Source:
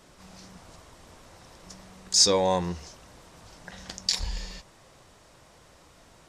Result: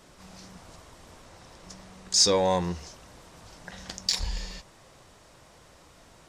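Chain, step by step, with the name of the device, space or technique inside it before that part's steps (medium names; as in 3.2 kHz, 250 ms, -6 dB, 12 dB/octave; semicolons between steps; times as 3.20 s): parallel distortion (in parallel at -8.5 dB: hard clipper -23 dBFS, distortion -7 dB); 1.22–2.37 s: on the sum: Bessel low-pass 11 kHz, order 2; trim -2 dB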